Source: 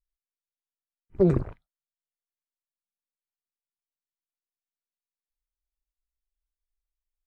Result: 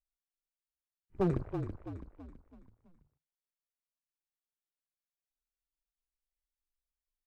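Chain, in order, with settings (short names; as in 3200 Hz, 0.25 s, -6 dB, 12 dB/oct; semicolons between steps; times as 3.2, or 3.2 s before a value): one-sided fold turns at -17.5 dBFS; frequency-shifting echo 0.329 s, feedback 45%, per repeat -34 Hz, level -7 dB; gain -8.5 dB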